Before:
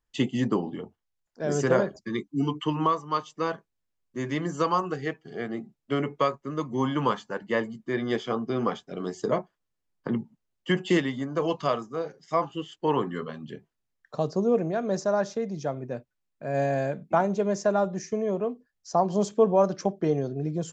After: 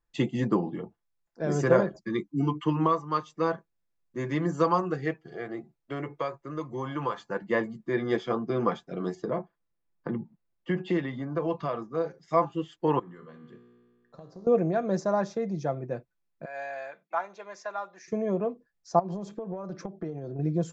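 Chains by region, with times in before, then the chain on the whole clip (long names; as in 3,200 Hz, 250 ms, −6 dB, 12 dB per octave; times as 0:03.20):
0:05.26–0:07.30: parametric band 200 Hz −11.5 dB 0.68 octaves + downward compressor 1.5 to 1, threshold −34 dBFS
0:09.15–0:11.95: downward compressor 2 to 1, threshold −28 dBFS + high-frequency loss of the air 130 metres
0:12.99–0:14.47: downward compressor, threshold −30 dBFS + tuned comb filter 60 Hz, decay 1.9 s, mix 80%
0:16.45–0:18.08: high-pass filter 1,200 Hz + high-frequency loss of the air 97 metres
0:18.99–0:20.39: high-shelf EQ 5,300 Hz −7.5 dB + downward compressor 16 to 1, threshold −31 dBFS
whole clip: high-shelf EQ 4,100 Hz −9.5 dB; notch filter 3,000 Hz, Q 10; comb filter 5.9 ms, depth 39%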